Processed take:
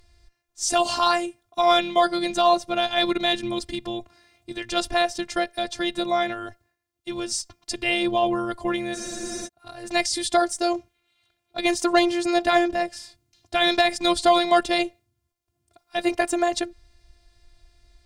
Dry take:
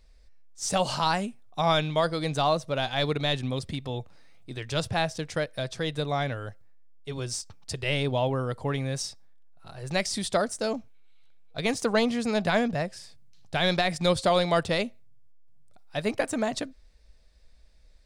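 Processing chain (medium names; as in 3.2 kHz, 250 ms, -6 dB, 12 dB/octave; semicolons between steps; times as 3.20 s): robot voice 348 Hz; Chebyshev shaper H 4 -31 dB, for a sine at -9.5 dBFS; spectral freeze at 8.96 s, 0.50 s; trim +8 dB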